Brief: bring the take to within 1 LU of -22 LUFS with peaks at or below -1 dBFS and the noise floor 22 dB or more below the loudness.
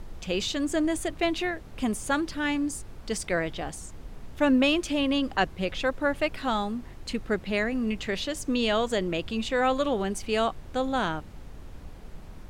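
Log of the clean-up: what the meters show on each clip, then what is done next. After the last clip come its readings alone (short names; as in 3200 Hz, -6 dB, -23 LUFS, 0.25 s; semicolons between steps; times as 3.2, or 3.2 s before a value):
noise floor -44 dBFS; noise floor target -50 dBFS; loudness -28.0 LUFS; peak -9.5 dBFS; loudness target -22.0 LUFS
-> noise print and reduce 6 dB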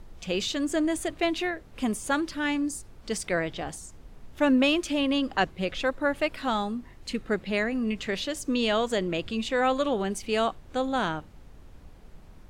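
noise floor -50 dBFS; loudness -28.0 LUFS; peak -9.5 dBFS; loudness target -22.0 LUFS
-> gain +6 dB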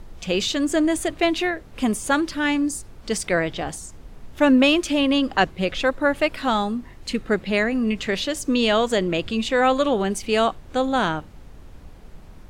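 loudness -22.0 LUFS; peak -3.5 dBFS; noise floor -44 dBFS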